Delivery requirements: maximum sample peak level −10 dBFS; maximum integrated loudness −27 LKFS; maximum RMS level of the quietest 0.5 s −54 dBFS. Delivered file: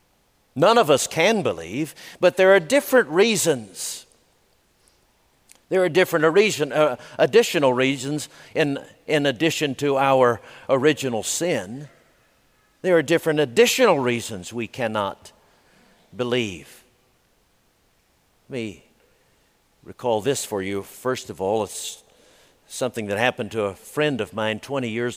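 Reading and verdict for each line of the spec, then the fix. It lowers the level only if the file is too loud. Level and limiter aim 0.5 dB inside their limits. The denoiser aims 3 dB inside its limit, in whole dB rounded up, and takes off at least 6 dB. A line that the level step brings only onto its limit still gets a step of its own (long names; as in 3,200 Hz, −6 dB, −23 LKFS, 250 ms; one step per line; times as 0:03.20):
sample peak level −4.5 dBFS: out of spec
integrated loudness −21.5 LKFS: out of spec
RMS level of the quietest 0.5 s −63 dBFS: in spec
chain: level −6 dB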